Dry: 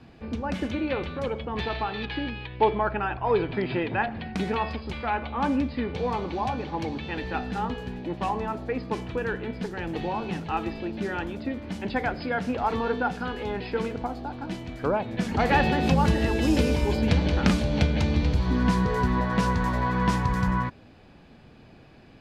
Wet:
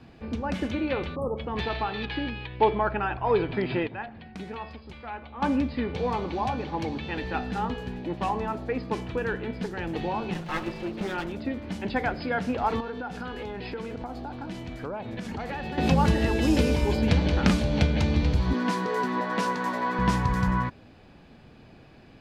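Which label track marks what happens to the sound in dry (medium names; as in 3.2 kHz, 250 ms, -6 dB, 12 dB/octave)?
1.150000	1.370000	spectral selection erased 1.3–8.1 kHz
3.870000	5.420000	gain -10 dB
10.340000	11.320000	comb filter that takes the minimum delay 5.6 ms
12.800000	15.780000	compression 5:1, threshold -31 dBFS
18.530000	19.990000	high-pass 230 Hz 24 dB/octave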